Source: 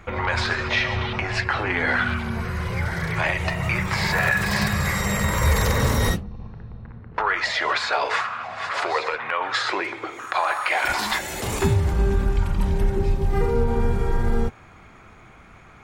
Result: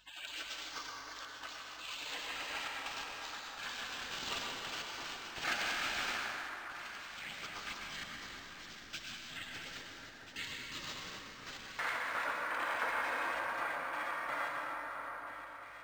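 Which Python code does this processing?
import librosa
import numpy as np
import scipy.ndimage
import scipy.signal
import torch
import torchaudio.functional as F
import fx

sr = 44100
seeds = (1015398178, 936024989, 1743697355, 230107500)

y = fx.highpass(x, sr, hz=670.0, slope=24, at=(9.62, 10.19))
y = fx.spec_gate(y, sr, threshold_db=-30, keep='weak')
y = fx.peak_eq(y, sr, hz=1500.0, db=13.0, octaves=2.2)
y = fx.rider(y, sr, range_db=3, speed_s=2.0)
y = fx.add_hum(y, sr, base_hz=50, snr_db=34)
y = fx.step_gate(y, sr, bpm=84, pattern='xxxxx.x.x.', floor_db=-60.0, edge_ms=4.5)
y = fx.echo_alternate(y, sr, ms=668, hz=1800.0, feedback_pct=59, wet_db=-7)
y = fx.rev_plate(y, sr, seeds[0], rt60_s=3.5, hf_ratio=0.4, predelay_ms=90, drr_db=-2.0)
y = np.interp(np.arange(len(y)), np.arange(len(y))[::4], y[::4])
y = y * 10.0 ** (-4.5 / 20.0)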